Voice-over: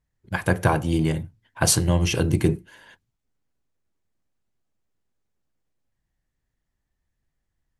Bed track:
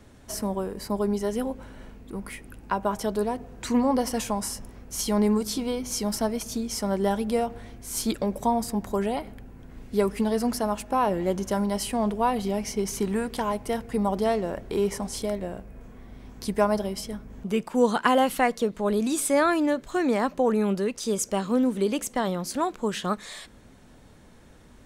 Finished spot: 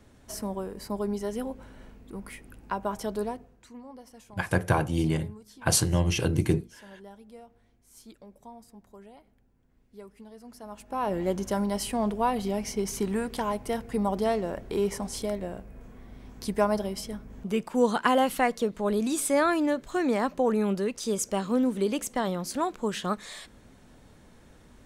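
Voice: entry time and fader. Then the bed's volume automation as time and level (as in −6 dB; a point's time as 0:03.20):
4.05 s, −4.0 dB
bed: 0:03.29 −4.5 dB
0:03.71 −23 dB
0:10.43 −23 dB
0:11.16 −2 dB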